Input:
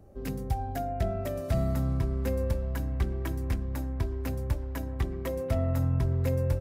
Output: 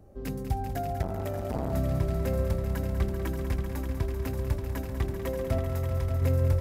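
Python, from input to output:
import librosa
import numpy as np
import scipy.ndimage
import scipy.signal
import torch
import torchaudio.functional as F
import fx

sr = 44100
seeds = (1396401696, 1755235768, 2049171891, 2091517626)

y = fx.peak_eq(x, sr, hz=260.0, db=-12.0, octaves=2.5, at=(5.58, 6.22))
y = fx.echo_heads(y, sr, ms=194, heads='all three', feedback_pct=49, wet_db=-10.0)
y = fx.transformer_sat(y, sr, knee_hz=410.0, at=(1.02, 1.73))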